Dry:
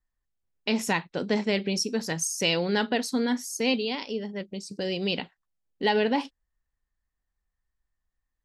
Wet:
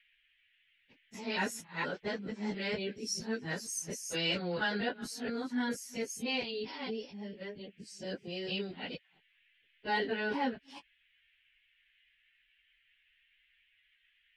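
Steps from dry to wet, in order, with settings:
reversed piece by piece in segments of 135 ms
dynamic equaliser 1,500 Hz, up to +8 dB, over −49 dBFS, Q 2.9
noise in a band 1,700–3,200 Hz −62 dBFS
time stretch by phase vocoder 1.7×
level −6.5 dB

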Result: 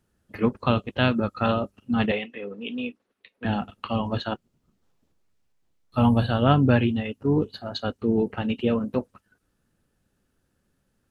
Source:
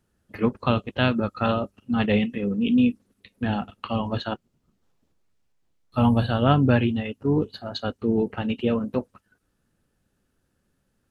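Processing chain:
0:02.11–0:03.45: three-way crossover with the lows and the highs turned down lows −20 dB, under 400 Hz, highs −14 dB, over 4,000 Hz

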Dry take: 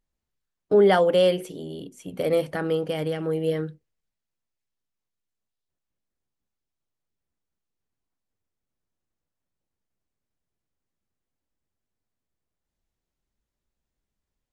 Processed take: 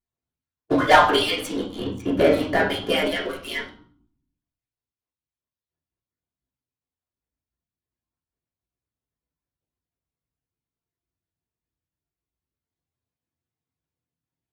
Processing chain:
harmonic-percussive split with one part muted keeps percussive
0:01.93–0:02.68: high-shelf EQ 6,000 Hz −10 dB
leveller curve on the samples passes 3
convolution reverb RT60 0.55 s, pre-delay 3 ms, DRR −5.5 dB
level −1.5 dB

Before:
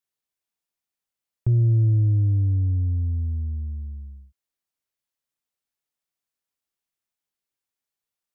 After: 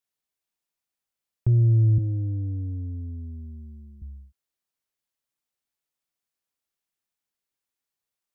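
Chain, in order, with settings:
0:01.98–0:04.02: high-pass filter 150 Hz 12 dB per octave

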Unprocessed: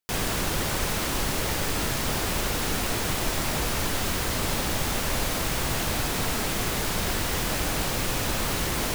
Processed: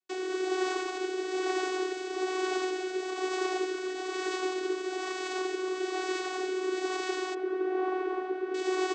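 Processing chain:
0:07.34–0:08.54: low-pass filter 1,300 Hz 12 dB per octave
brickwall limiter −19 dBFS, peak gain reduction 5.5 dB
channel vocoder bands 16, saw 372 Hz
rotating-speaker cabinet horn 1.1 Hz
far-end echo of a speakerphone 330 ms, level −20 dB
level +2.5 dB

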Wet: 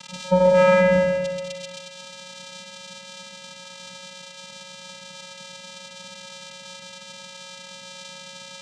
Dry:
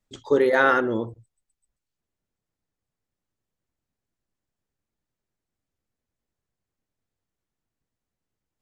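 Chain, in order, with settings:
spike at every zero crossing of −14 dBFS
on a send: echo with a time of its own for lows and highs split 1,900 Hz, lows 125 ms, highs 359 ms, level −9.5 dB
on the sum: channel vocoder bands 4, square 183 Hz
spring reverb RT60 1.5 s, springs 35/40 ms, chirp 70 ms, DRR 3.5 dB

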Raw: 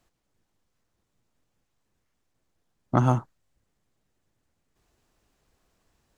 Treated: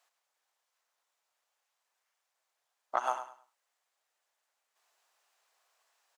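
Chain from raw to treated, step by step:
high-pass filter 670 Hz 24 dB per octave
downward compressor, threshold −25 dBFS, peak gain reduction 5.5 dB
repeating echo 103 ms, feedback 25%, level −11 dB

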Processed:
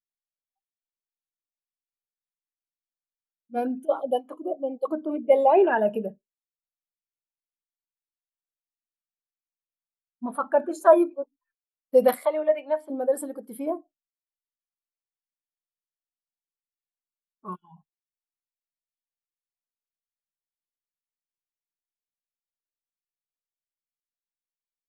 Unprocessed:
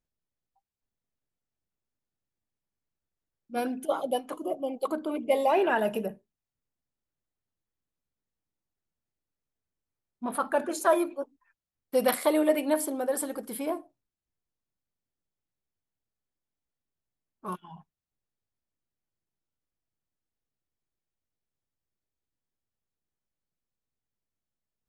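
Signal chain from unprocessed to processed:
0:12.25–0:12.90: three-way crossover with the lows and the highs turned down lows −16 dB, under 540 Hz, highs −16 dB, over 4,100 Hz
every bin expanded away from the loudest bin 1.5 to 1
level +6.5 dB

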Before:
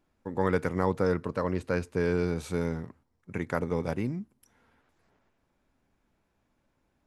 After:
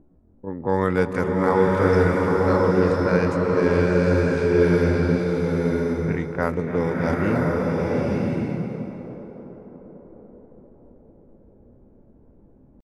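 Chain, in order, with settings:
tempo change 0.55×
upward compression, threshold −47 dBFS
low-pass that shuts in the quiet parts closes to 360 Hz, open at −24 dBFS
tape delay 288 ms, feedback 84%, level −11.5 dB, low-pass 1,700 Hz
slow-attack reverb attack 1,040 ms, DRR −2.5 dB
level +5 dB

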